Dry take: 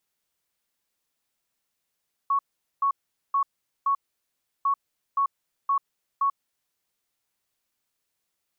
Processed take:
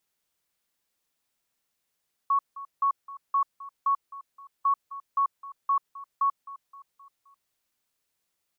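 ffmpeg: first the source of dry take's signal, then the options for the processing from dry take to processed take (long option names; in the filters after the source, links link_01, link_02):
-f lavfi -i "aevalsrc='0.106*sin(2*PI*1110*t)*clip(min(mod(mod(t,2.35),0.52),0.09-mod(mod(t,2.35),0.52))/0.005,0,1)*lt(mod(t,2.35),2.08)':duration=4.7:sample_rate=44100"
-af "aecho=1:1:261|522|783|1044:0.158|0.0777|0.0381|0.0186"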